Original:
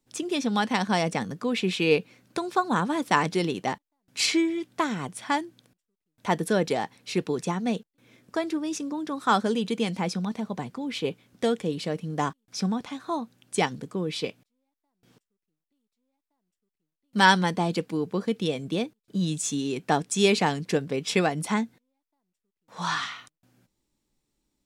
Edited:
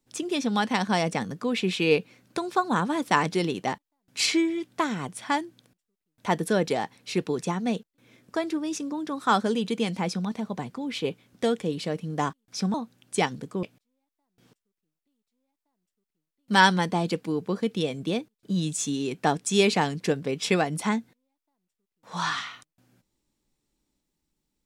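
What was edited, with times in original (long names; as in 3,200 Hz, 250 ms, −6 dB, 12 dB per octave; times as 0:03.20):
0:12.74–0:13.14: remove
0:14.03–0:14.28: remove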